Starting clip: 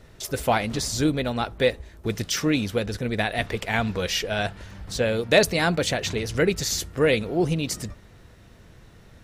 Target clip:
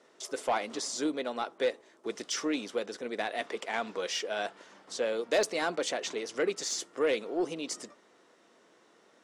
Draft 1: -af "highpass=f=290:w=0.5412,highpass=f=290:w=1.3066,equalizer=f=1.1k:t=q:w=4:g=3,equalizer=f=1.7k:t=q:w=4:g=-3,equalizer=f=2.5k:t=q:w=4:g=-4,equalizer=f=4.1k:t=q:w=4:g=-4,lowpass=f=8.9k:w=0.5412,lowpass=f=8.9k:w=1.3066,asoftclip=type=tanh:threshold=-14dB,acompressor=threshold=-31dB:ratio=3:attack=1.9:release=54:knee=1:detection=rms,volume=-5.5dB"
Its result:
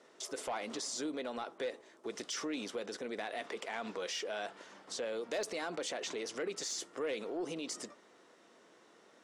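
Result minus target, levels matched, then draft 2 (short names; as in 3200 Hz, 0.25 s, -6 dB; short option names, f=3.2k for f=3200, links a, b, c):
compressor: peak gain reduction +11 dB
-af "highpass=f=290:w=0.5412,highpass=f=290:w=1.3066,equalizer=f=1.1k:t=q:w=4:g=3,equalizer=f=1.7k:t=q:w=4:g=-3,equalizer=f=2.5k:t=q:w=4:g=-4,equalizer=f=4.1k:t=q:w=4:g=-4,lowpass=f=8.9k:w=0.5412,lowpass=f=8.9k:w=1.3066,asoftclip=type=tanh:threshold=-14dB,volume=-5.5dB"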